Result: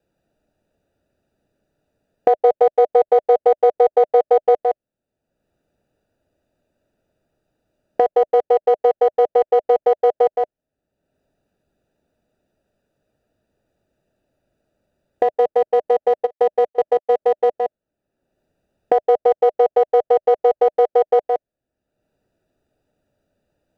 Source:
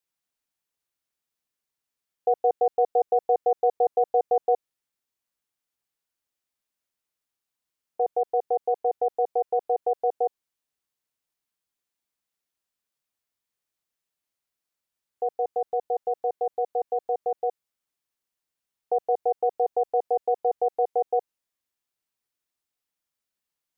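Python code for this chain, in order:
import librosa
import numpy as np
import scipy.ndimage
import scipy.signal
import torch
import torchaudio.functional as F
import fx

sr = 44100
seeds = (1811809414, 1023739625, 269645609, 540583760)

p1 = fx.wiener(x, sr, points=41)
p2 = fx.peak_eq(p1, sr, hz=610.0, db=8.5, octaves=0.26)
p3 = p2 + fx.echo_single(p2, sr, ms=166, db=-5.0, dry=0)
p4 = fx.step_gate(p3, sr, bpm=160, pattern='xx.xx..x', floor_db=-24.0, edge_ms=4.5, at=(16.25, 17.08), fade=0.02)
p5 = fx.band_squash(p4, sr, depth_pct=70)
y = p5 * librosa.db_to_amplitude(6.5)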